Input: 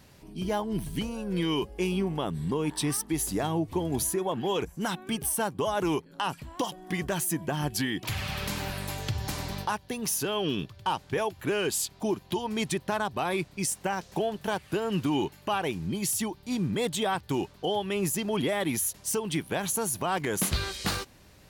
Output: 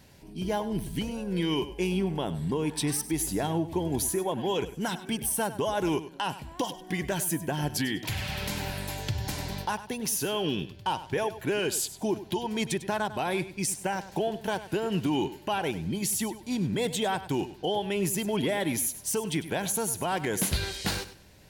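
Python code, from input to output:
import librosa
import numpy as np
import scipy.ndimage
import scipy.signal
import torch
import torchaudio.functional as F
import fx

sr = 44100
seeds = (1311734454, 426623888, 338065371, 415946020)

p1 = fx.notch(x, sr, hz=1200.0, q=5.3)
y = p1 + fx.echo_feedback(p1, sr, ms=99, feedback_pct=24, wet_db=-14, dry=0)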